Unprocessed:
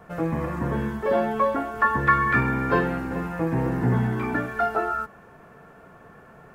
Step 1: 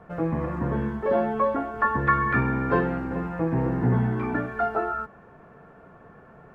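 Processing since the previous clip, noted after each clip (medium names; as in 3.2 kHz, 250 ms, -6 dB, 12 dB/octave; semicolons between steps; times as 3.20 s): low-pass 1.5 kHz 6 dB/octave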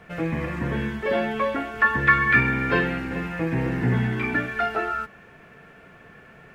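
resonant high shelf 1.6 kHz +13 dB, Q 1.5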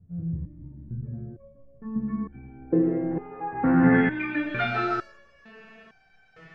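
low-pass sweep 120 Hz -> 5.1 kHz, 1.53–4.91 s; algorithmic reverb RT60 1.1 s, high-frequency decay 0.25×, pre-delay 65 ms, DRR 5 dB; resonator arpeggio 2.2 Hz 87–770 Hz; trim +8.5 dB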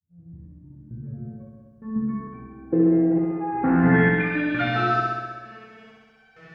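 fade-in on the opening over 1.29 s; high-pass 46 Hz; on a send: flutter echo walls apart 11 m, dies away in 1.4 s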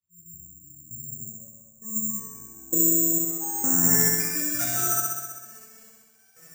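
careless resampling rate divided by 6×, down none, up zero stuff; trim -10.5 dB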